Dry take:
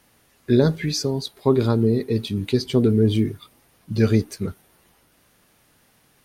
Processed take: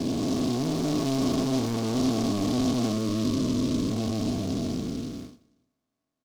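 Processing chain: time blur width 1.16 s; gate -49 dBFS, range -30 dB; high shelf 2900 Hz -10.5 dB; in parallel at +1 dB: compressor, threshold -32 dBFS, peak gain reduction 11.5 dB; on the sum: soft clip -29.5 dBFS, distortion -6 dB; small resonant body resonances 270/660/1100/2200 Hz, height 13 dB; 2.92–3.92 Butterworth band-stop 760 Hz, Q 2.6; feedback echo 0.187 s, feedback 38%, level -24 dB; noise-modulated delay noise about 4300 Hz, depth 0.086 ms

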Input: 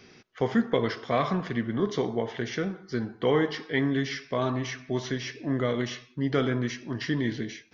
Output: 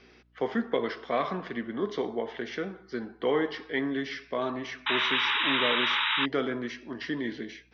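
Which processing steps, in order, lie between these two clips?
three-band isolator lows -23 dB, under 200 Hz, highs -21 dB, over 5100 Hz; painted sound noise, 4.86–6.26, 830–3900 Hz -25 dBFS; hum 60 Hz, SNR 35 dB; gain -2 dB

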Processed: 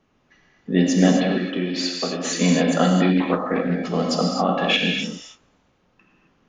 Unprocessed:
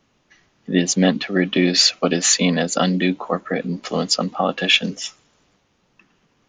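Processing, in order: high shelf 3100 Hz -11 dB; 1.18–2.37 compressor 10:1, threshold -22 dBFS, peak gain reduction 10.5 dB; non-linear reverb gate 0.29 s flat, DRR -0.5 dB; 3.17–3.75 Doppler distortion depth 0.19 ms; gain -1.5 dB

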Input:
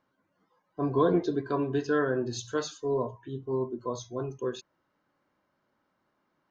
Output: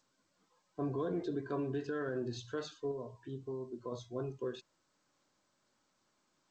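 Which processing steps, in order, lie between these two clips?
LPF 3800 Hz 12 dB/oct; dynamic EQ 970 Hz, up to -5 dB, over -48 dBFS, Q 3; 2.91–3.92 compressor 10:1, threshold -33 dBFS, peak gain reduction 9.5 dB; limiter -24 dBFS, peak gain reduction 9 dB; gain -4.5 dB; G.722 64 kbps 16000 Hz

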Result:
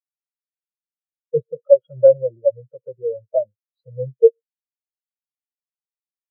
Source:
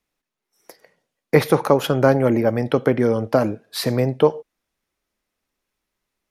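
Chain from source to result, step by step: notch 430 Hz, Q 12; in parallel at -1 dB: limiter -11 dBFS, peak gain reduction 10 dB; on the sum: fixed phaser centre 1400 Hz, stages 8; spectral expander 4:1; gain +2 dB

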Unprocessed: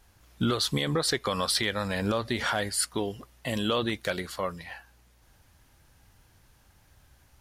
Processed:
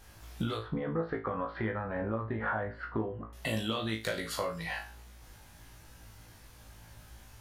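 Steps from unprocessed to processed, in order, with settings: 0.57–3.33 LPF 1600 Hz 24 dB/oct; compressor 6:1, threshold -37 dBFS, peak gain reduction 14 dB; flutter echo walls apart 3.1 m, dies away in 0.3 s; gain +4.5 dB

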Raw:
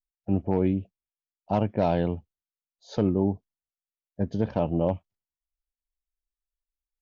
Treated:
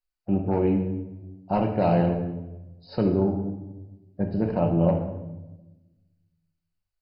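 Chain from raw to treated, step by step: 4.31–4.8 high shelf 5400 Hz -9.5 dB; shoebox room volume 510 m³, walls mixed, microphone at 0.97 m; MP2 32 kbps 48000 Hz

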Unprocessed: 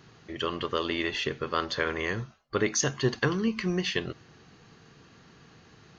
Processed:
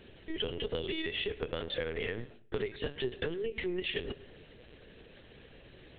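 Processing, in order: fixed phaser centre 460 Hz, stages 4; gate with hold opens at -56 dBFS; in parallel at -1.5 dB: limiter -22 dBFS, peak gain reduction 8.5 dB; on the sum: LPC vocoder at 8 kHz pitch kept; on a send at -22 dB: reverb RT60 0.45 s, pre-delay 0.102 s; on the sum: compressor 5:1, threshold -32 dBFS, peak gain reduction 12 dB

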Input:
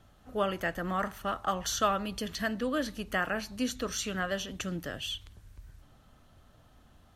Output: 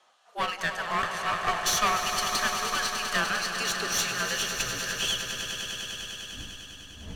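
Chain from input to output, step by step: wind noise 110 Hz -34 dBFS; weighting filter ITU-R 468; spectral noise reduction 10 dB; high shelf 8100 Hz -9 dB; in parallel at -1.5 dB: compressor, threshold -41 dBFS, peak gain reduction 18.5 dB; on the sum: high-pass sweep 850 Hz -> 63 Hz, 3.54–4.29; frequency shift -60 Hz; one-sided clip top -31.5 dBFS; on a send: swelling echo 0.1 s, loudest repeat 5, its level -10 dB

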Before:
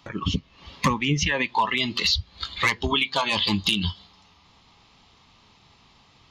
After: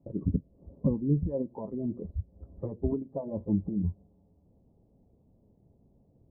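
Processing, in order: Wiener smoothing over 9 samples; elliptic low-pass 590 Hz, stop band 80 dB; gain -1.5 dB

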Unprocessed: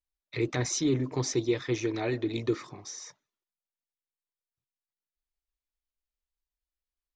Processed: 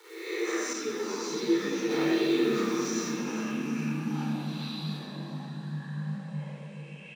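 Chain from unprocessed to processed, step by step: spectral swells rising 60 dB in 0.80 s; high shelf 5200 Hz +11.5 dB; limiter -22.5 dBFS, peak gain reduction 11 dB; bit-crush 8-bit; rippled Chebyshev high-pass 320 Hz, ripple 9 dB; echoes that change speed 0.321 s, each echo -7 st, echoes 2, each echo -6 dB; feedback echo 0.404 s, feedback 57%, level -11 dB; shoebox room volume 2300 m³, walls mixed, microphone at 4.3 m; 0.73–1.91 ensemble effect

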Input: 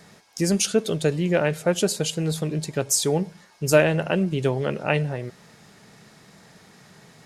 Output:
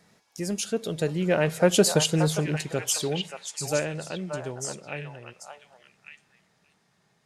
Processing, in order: Doppler pass-by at 1.94, 9 m/s, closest 3.5 m; on a send: delay with a stepping band-pass 0.578 s, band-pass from 960 Hz, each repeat 1.4 oct, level -1 dB; on the sum: gain +3.5 dB

